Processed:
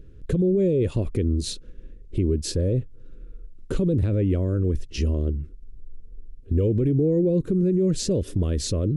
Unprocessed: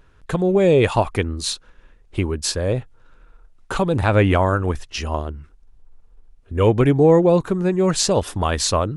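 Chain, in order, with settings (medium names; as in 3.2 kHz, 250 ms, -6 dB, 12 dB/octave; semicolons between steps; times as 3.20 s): FFT filter 360 Hz 0 dB, 530 Hz -6 dB, 810 Hz -30 dB, 2 kHz -18 dB, 4.8 kHz -15 dB; in parallel at +2.5 dB: compression, threshold -31 dBFS, peak gain reduction 17.5 dB; on the sum: peak limiter -16 dBFS, peak gain reduction 10.5 dB; trim +1.5 dB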